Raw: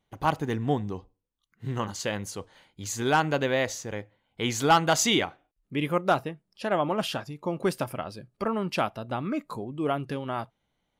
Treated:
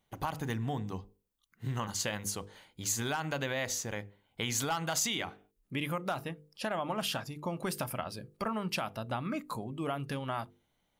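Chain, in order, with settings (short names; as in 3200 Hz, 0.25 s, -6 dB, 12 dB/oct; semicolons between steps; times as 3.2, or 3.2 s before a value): notches 50/100/150/200/250/300/350/400/450/500 Hz; limiter -18 dBFS, peak gain reduction 7.5 dB; dynamic EQ 380 Hz, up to -7 dB, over -43 dBFS, Q 1.3; compressor 3:1, threshold -31 dBFS, peak gain reduction 7 dB; high shelf 9100 Hz +9.5 dB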